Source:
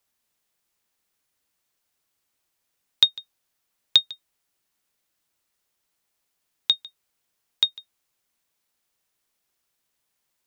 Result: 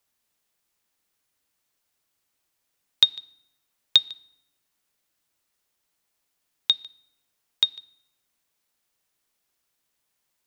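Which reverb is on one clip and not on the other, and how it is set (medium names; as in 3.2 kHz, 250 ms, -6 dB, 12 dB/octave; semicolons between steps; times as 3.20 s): FDN reverb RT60 0.9 s, low-frequency decay 1.3×, high-frequency decay 0.75×, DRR 19.5 dB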